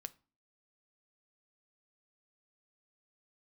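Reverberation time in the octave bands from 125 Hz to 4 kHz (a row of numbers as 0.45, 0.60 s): 0.45, 0.55, 0.35, 0.40, 0.30, 0.30 s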